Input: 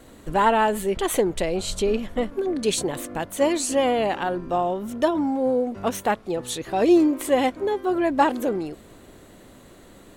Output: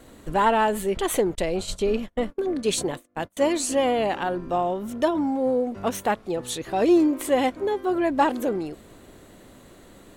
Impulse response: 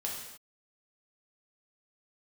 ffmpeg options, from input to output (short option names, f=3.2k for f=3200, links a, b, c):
-filter_complex "[0:a]asettb=1/sr,asplit=3[a][b][c];[a]atrim=end=1.354[d];[b]atrim=start=1.35:end=3.37,asetpts=PTS-STARTPTS,afade=t=in:d=0.004:c=qsin,afade=t=out:st=2.016:d=0.004:c=qsin,agate=range=-32dB:threshold=-28dB:ratio=16:detection=peak[e];[c]atrim=start=3.366[f];[d][e]acrossfade=d=0.004:c1=hsin:c2=qsin[g];[g][f]acrossfade=d=0.004:c1=qsin:c2=hsin,acontrast=32,volume=-6dB"